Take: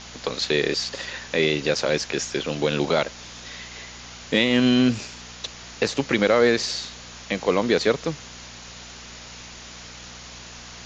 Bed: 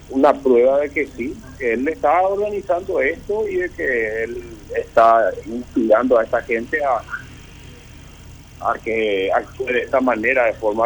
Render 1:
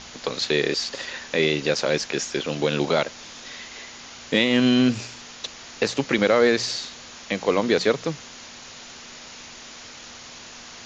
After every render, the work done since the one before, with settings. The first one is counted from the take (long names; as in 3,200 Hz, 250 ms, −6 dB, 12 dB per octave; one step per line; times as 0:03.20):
hum removal 60 Hz, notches 3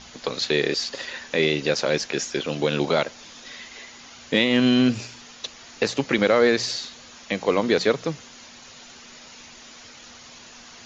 broadband denoise 6 dB, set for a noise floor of −42 dBFS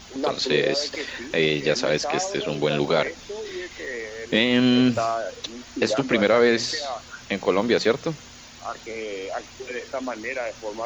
mix in bed −13 dB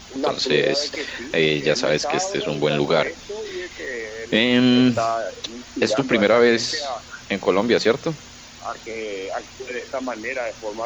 level +2.5 dB
brickwall limiter −3 dBFS, peak gain reduction 1 dB